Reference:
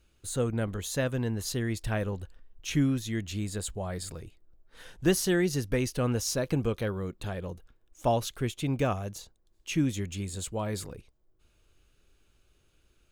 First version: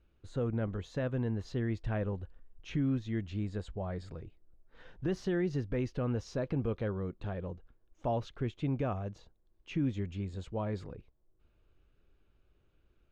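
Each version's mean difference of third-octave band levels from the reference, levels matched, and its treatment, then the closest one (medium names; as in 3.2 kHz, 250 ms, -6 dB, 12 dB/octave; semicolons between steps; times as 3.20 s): 6.0 dB: treble shelf 2.2 kHz -8.5 dB; peak limiter -21 dBFS, peak gain reduction 8 dB; distance through air 180 m; trim -2 dB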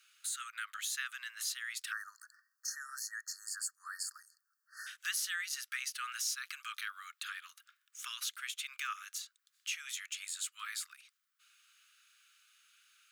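21.5 dB: spectral selection erased 1.92–4.87 s, 1.9–4.2 kHz; steep high-pass 1.2 kHz 96 dB/octave; compression 2:1, threshold -50 dBFS, peak gain reduction 12 dB; trim +7.5 dB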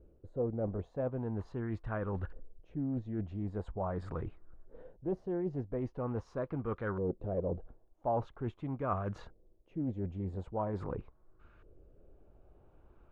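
11.0 dB: reverse; compression 10:1, threshold -40 dBFS, peak gain reduction 21.5 dB; reverse; LFO low-pass saw up 0.43 Hz 480–1500 Hz; loudspeaker Doppler distortion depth 0.23 ms; trim +6 dB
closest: first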